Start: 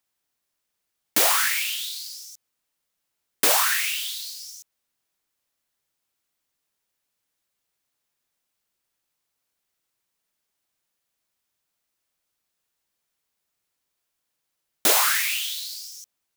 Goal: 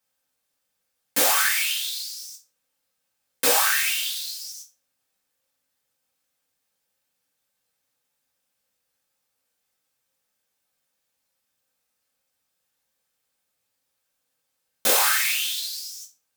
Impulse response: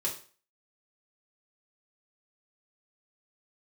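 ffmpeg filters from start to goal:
-filter_complex "[0:a]asettb=1/sr,asplit=3[a][b][c];[a]atrim=end=1.924[d];[b]atrim=start=1.92:end=2.32,asetpts=PTS-STARTPTS,afade=t=in:d=0.004:c=qsin,afade=t=out:st=0.396:d=0.004:c=qsin,highpass=530[e];[c]atrim=start=2.316[f];[d][e]acrossfade=d=0.004:c1=hsin:c2=qsin[g];[g][f]acrossfade=d=0.004:c1=qsin:c2=hsin,asplit=2[h][i];[i]alimiter=limit=-15.5dB:level=0:latency=1,volume=0dB[j];[h][j]amix=inputs=2:normalize=0[k];[1:a]atrim=start_sample=2205,asetrate=61740,aresample=44100[l];[k][l]afir=irnorm=-1:irlink=0,volume=-4.5dB"

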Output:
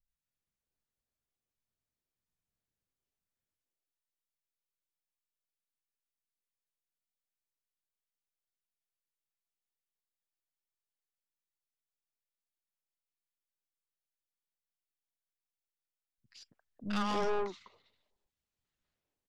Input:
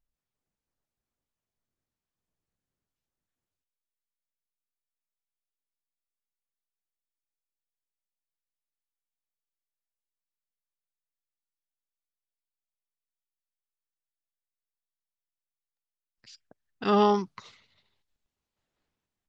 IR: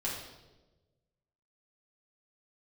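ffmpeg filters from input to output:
-filter_complex "[0:a]acrossover=split=260|950[a][b][c];[c]adelay=80[d];[b]adelay=280[e];[a][e][d]amix=inputs=3:normalize=0,aeval=exprs='(tanh(28.2*val(0)+0.7)-tanh(0.7))/28.2':c=same"

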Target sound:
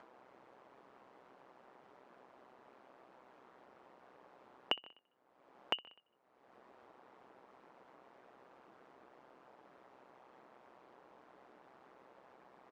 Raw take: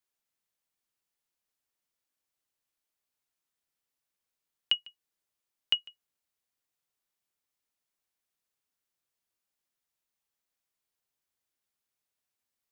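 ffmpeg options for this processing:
-filter_complex "[0:a]asuperpass=centerf=540:order=4:qfactor=0.68,aeval=exprs='val(0)*sin(2*PI*64*n/s)':c=same,asplit=2[a][b];[b]aecho=0:1:63|126|189|252:0.0944|0.051|0.0275|0.0149[c];[a][c]amix=inputs=2:normalize=0,acompressor=mode=upward:threshold=-54dB:ratio=2.5,volume=15dB"

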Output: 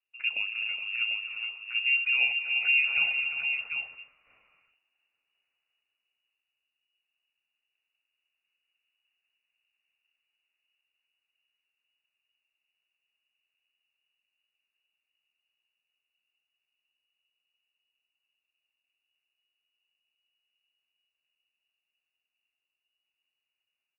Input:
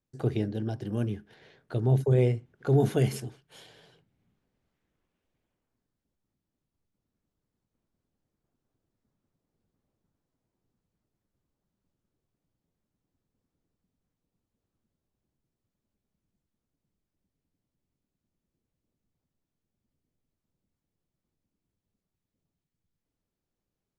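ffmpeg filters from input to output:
-af "aecho=1:1:82|258|348|419|748:0.106|0.237|0.316|0.335|0.473,lowpass=f=2.5k:t=q:w=0.5098,lowpass=f=2.5k:t=q:w=0.6013,lowpass=f=2.5k:t=q:w=0.9,lowpass=f=2.5k:t=q:w=2.563,afreqshift=-2900,volume=-3dB"

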